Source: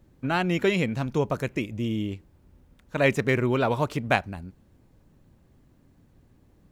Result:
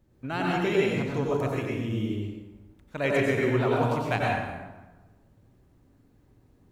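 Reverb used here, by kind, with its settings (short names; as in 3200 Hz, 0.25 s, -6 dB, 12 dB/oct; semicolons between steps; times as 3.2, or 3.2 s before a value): plate-style reverb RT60 1.2 s, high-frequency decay 0.65×, pre-delay 80 ms, DRR -4 dB; gain -7 dB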